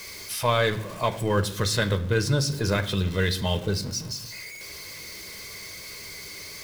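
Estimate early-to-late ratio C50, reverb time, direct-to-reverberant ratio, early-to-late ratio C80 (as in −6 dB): 15.0 dB, 0.65 s, 6.5 dB, 18.0 dB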